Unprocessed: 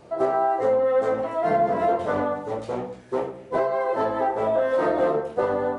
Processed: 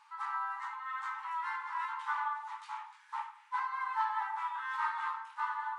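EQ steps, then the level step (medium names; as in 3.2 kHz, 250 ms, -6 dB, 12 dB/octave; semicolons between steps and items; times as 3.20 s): brick-wall FIR high-pass 820 Hz; treble shelf 3.7 kHz -8.5 dB; -2.5 dB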